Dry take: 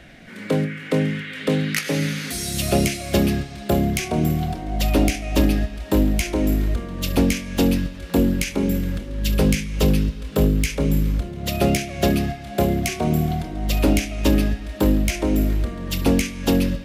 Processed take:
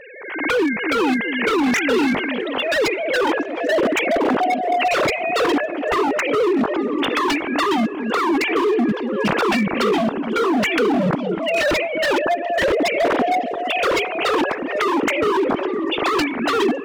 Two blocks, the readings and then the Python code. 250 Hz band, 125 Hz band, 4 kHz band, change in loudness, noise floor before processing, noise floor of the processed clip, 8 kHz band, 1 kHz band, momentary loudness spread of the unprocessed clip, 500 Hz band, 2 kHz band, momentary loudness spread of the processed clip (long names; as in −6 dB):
0.0 dB, −13.5 dB, +3.5 dB, +2.5 dB, −36 dBFS, −27 dBFS, −5.5 dB, +11.0 dB, 6 LU, +6.5 dB, +9.0 dB, 3 LU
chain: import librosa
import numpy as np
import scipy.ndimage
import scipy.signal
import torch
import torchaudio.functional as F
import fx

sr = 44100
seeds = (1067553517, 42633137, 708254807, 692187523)

p1 = fx.sine_speech(x, sr)
p2 = 10.0 ** (-18.5 / 20.0) * (np.abs((p1 / 10.0 ** (-18.5 / 20.0) + 3.0) % 4.0 - 2.0) - 1.0)
p3 = p2 + fx.echo_stepped(p2, sr, ms=238, hz=250.0, octaves=0.7, feedback_pct=70, wet_db=-7, dry=0)
p4 = fx.pre_swell(p3, sr, db_per_s=58.0)
y = p4 * 10.0 ** (5.0 / 20.0)